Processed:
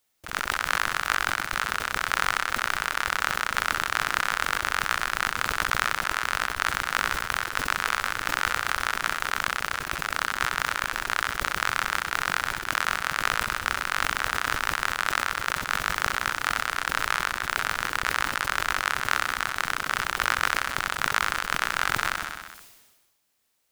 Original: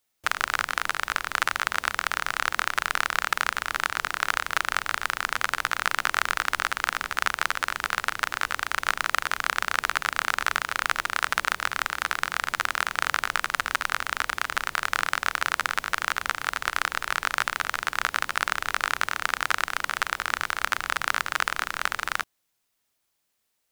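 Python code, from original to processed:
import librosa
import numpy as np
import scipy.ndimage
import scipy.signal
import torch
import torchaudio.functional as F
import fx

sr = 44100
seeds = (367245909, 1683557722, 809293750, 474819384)

p1 = fx.over_compress(x, sr, threshold_db=-29.0, ratio=-0.5)
p2 = p1 + fx.echo_feedback(p1, sr, ms=64, feedback_pct=51, wet_db=-10, dry=0)
y = fx.sustainer(p2, sr, db_per_s=43.0)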